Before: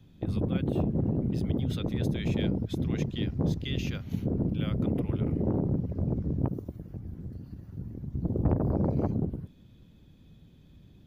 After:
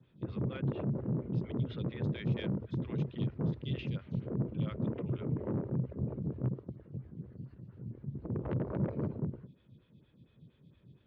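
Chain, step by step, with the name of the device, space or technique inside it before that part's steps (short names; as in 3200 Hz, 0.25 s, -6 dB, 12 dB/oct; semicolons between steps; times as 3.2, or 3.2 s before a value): vibe pedal into a guitar amplifier (photocell phaser 4.3 Hz; tube stage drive 27 dB, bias 0.25; speaker cabinet 88–3800 Hz, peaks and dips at 130 Hz +8 dB, 280 Hz -5 dB, 750 Hz -8 dB)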